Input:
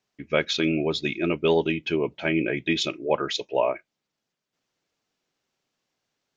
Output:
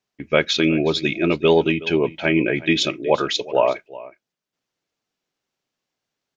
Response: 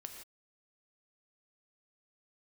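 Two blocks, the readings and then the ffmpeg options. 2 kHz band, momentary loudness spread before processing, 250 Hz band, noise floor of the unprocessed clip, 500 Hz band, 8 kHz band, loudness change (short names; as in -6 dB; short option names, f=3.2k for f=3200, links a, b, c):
+5.5 dB, 4 LU, +5.5 dB, -84 dBFS, +5.5 dB, n/a, +5.5 dB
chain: -filter_complex "[0:a]agate=range=-8dB:threshold=-43dB:ratio=16:detection=peak,asplit=2[a][b];[b]aecho=0:1:369:0.119[c];[a][c]amix=inputs=2:normalize=0,volume=5.5dB"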